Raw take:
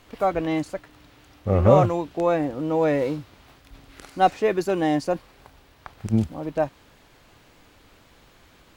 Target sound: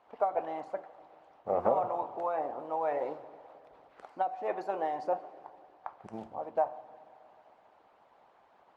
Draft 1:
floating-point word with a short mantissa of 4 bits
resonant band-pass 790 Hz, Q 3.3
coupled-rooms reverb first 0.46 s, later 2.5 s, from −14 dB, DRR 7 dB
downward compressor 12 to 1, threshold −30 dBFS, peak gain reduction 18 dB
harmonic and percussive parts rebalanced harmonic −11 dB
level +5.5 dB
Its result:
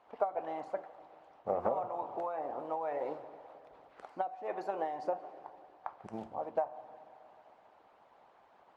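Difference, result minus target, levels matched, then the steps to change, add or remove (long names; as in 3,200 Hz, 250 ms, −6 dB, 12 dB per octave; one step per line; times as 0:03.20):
downward compressor: peak gain reduction +6 dB
change: downward compressor 12 to 1, threshold −23.5 dBFS, peak gain reduction 12 dB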